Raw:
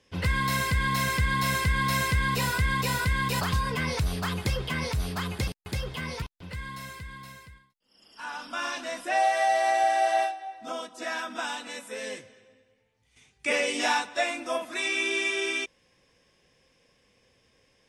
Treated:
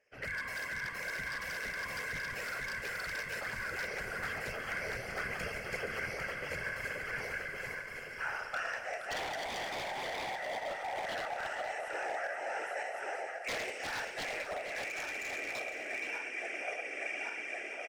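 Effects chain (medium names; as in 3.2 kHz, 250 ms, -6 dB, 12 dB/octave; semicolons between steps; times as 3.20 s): backward echo that repeats 558 ms, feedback 65%, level -5 dB; high-pass 78 Hz; three-band isolator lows -14 dB, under 450 Hz, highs -12 dB, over 5.3 kHz; static phaser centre 1 kHz, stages 6; whisper effect; wavefolder -26.5 dBFS; gain riding; delay 472 ms -10 dB; reverberation RT60 1.5 s, pre-delay 34 ms, DRR 12.5 dB; trim -5 dB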